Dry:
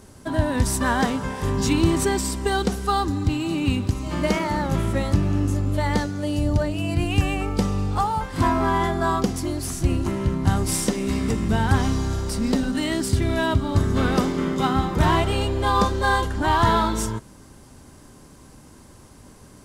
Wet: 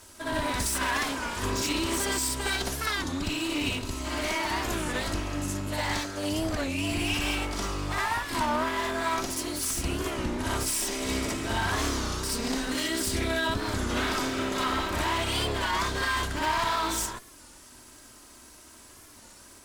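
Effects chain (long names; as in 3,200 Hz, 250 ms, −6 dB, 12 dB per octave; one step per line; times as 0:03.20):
lower of the sound and its delayed copy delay 3.1 ms
tilt shelving filter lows −6.5 dB, about 900 Hz
brickwall limiter −17 dBFS, peak gain reduction 9 dB
backwards echo 61 ms −3.5 dB
wow of a warped record 33 1/3 rpm, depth 160 cents
level −3.5 dB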